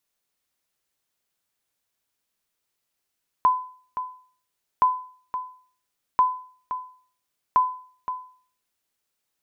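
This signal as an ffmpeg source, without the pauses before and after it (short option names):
-f lavfi -i "aevalsrc='0.282*(sin(2*PI*1010*mod(t,1.37))*exp(-6.91*mod(t,1.37)/0.47)+0.282*sin(2*PI*1010*max(mod(t,1.37)-0.52,0))*exp(-6.91*max(mod(t,1.37)-0.52,0)/0.47))':d=5.48:s=44100"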